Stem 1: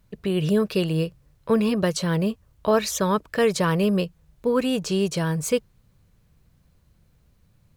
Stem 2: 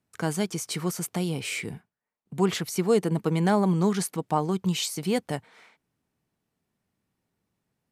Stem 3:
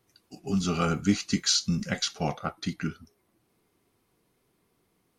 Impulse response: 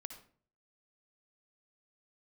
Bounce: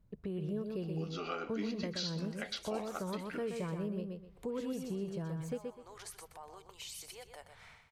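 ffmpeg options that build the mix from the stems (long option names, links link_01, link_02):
-filter_complex "[0:a]tiltshelf=frequency=1200:gain=7,volume=-13dB,asplit=2[link_01][link_02];[link_02]volume=-6dB[link_03];[1:a]acompressor=threshold=-32dB:ratio=6,alimiter=level_in=9dB:limit=-24dB:level=0:latency=1:release=95,volume=-9dB,highpass=frequency=510:width=0.5412,highpass=frequency=510:width=1.3066,adelay=2050,volume=-4.5dB,asplit=3[link_04][link_05][link_06];[link_05]volume=-8dB[link_07];[link_06]volume=-7dB[link_08];[2:a]highpass=frequency=300:width=0.5412,highpass=frequency=300:width=1.3066,lowpass=frequency=4600:width=0.5412,lowpass=frequency=4600:width=1.3066,adelay=500,volume=-1dB,asplit=2[link_09][link_10];[link_10]volume=-15.5dB[link_11];[3:a]atrim=start_sample=2205[link_12];[link_07][link_12]afir=irnorm=-1:irlink=0[link_13];[link_03][link_08][link_11]amix=inputs=3:normalize=0,aecho=0:1:125|250|375:1|0.17|0.0289[link_14];[link_01][link_04][link_09][link_13][link_14]amix=inputs=5:normalize=0,acompressor=threshold=-43dB:ratio=2"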